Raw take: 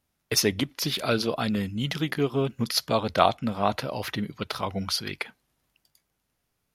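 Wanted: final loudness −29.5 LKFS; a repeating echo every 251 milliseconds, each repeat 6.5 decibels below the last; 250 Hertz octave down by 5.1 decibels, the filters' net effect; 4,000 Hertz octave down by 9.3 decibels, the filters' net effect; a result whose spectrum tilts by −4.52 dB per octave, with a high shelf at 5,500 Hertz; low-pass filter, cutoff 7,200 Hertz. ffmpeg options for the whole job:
ffmpeg -i in.wav -af "lowpass=7200,equalizer=frequency=250:width_type=o:gain=-6.5,equalizer=frequency=4000:width_type=o:gain=-7.5,highshelf=frequency=5500:gain=-8.5,aecho=1:1:251|502|753|1004|1255|1506:0.473|0.222|0.105|0.0491|0.0231|0.0109" out.wav

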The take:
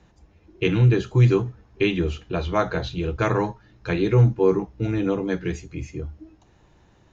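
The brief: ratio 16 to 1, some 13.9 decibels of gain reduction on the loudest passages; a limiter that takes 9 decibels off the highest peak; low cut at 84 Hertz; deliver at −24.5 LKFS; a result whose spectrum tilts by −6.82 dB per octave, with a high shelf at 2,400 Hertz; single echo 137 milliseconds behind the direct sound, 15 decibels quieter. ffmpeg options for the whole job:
ffmpeg -i in.wav -af "highpass=84,highshelf=frequency=2400:gain=-5,acompressor=threshold=-26dB:ratio=16,alimiter=limit=-23dB:level=0:latency=1,aecho=1:1:137:0.178,volume=9.5dB" out.wav

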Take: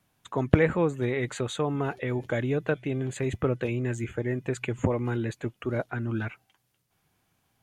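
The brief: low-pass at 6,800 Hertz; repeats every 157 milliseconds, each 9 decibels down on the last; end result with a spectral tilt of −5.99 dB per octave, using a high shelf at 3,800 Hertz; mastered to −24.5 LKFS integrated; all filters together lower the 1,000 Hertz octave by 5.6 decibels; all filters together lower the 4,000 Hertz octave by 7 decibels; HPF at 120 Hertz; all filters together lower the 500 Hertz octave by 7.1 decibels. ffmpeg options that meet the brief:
ffmpeg -i in.wav -af "highpass=120,lowpass=6800,equalizer=frequency=500:width_type=o:gain=-8,equalizer=frequency=1000:width_type=o:gain=-4,highshelf=frequency=3800:gain=-6,equalizer=frequency=4000:width_type=o:gain=-4.5,aecho=1:1:157|314|471|628:0.355|0.124|0.0435|0.0152,volume=8dB" out.wav

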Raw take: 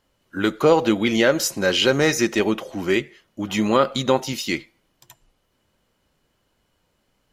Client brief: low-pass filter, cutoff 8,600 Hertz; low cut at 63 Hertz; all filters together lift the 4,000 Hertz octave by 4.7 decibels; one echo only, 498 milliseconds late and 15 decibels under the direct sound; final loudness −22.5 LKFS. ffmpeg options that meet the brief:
ffmpeg -i in.wav -af "highpass=63,lowpass=8600,equalizer=frequency=4000:width_type=o:gain=6.5,aecho=1:1:498:0.178,volume=-3dB" out.wav

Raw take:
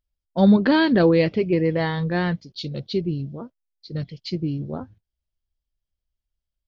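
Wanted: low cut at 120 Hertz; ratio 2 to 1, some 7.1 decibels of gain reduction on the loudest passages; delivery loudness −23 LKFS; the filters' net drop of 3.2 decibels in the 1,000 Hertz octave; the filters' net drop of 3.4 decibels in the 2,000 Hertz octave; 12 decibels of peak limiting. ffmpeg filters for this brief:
ffmpeg -i in.wav -af "highpass=120,equalizer=frequency=1000:width_type=o:gain=-3.5,equalizer=frequency=2000:width_type=o:gain=-3,acompressor=threshold=-25dB:ratio=2,volume=11.5dB,alimiter=limit=-14dB:level=0:latency=1" out.wav

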